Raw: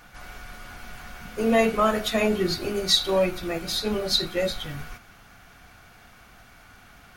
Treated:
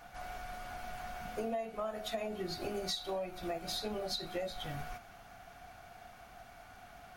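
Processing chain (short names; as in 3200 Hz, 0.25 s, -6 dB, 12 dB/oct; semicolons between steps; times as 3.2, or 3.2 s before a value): bell 710 Hz +13.5 dB 0.39 oct; compressor 12:1, threshold -28 dBFS, peak gain reduction 21 dB; gain -6.5 dB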